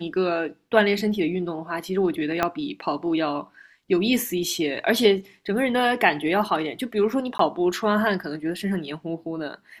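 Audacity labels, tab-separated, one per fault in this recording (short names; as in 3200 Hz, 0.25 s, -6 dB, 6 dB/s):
2.430000	2.430000	pop -8 dBFS
7.380000	7.390000	gap 13 ms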